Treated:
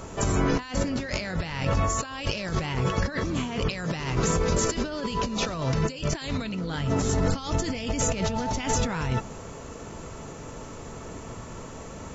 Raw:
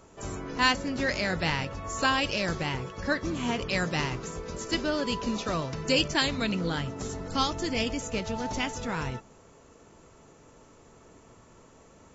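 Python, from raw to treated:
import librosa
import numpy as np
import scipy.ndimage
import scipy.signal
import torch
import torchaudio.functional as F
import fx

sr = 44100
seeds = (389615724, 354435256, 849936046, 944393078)

y = fx.peak_eq(x, sr, hz=340.0, db=-2.5, octaves=0.66)
y = fx.over_compress(y, sr, threshold_db=-38.0, ratio=-1.0)
y = fx.low_shelf(y, sr, hz=220.0, db=4.0)
y = y * 10.0 ** (8.0 / 20.0)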